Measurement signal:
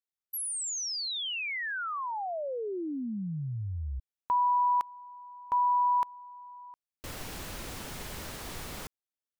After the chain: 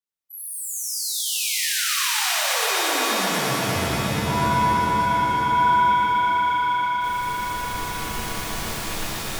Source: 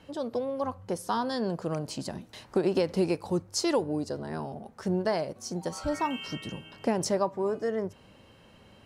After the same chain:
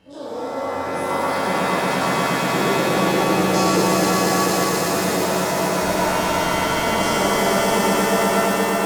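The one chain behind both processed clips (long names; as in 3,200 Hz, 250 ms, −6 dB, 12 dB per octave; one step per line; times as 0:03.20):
every bin's largest magnitude spread in time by 60 ms
echo that builds up and dies away 118 ms, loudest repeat 5, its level −4.5 dB
reverb with rising layers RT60 3.2 s, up +7 semitones, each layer −2 dB, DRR −6.5 dB
level −7 dB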